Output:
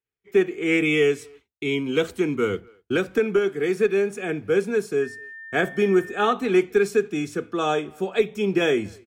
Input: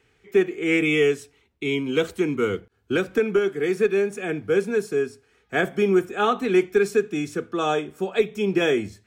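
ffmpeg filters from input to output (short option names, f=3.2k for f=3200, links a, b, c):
-filter_complex "[0:a]asplit=2[a][b];[b]adelay=250,highpass=300,lowpass=3.4k,asoftclip=type=hard:threshold=-17dB,volume=-27dB[c];[a][c]amix=inputs=2:normalize=0,agate=range=-33dB:threshold=-45dB:ratio=3:detection=peak,asettb=1/sr,asplit=3[d][e][f];[d]atrim=end=5.024[g];[e]atrim=start=5.02:end=6.33,asetpts=PTS-STARTPTS,afade=t=in:d=0.004:c=qsin,afade=t=out:st=1.306:d=0.004:c=qsin,aeval=exprs='val(0)+0.0141*sin(2*PI*1800*n/s)':c=same[h];[f]atrim=start=6.326[i];[g][h]acrossfade=d=0.004:c1=hsin:c2=qsin[j];[j][i]acrossfade=d=0.004:c1=qsin:c2=hsin"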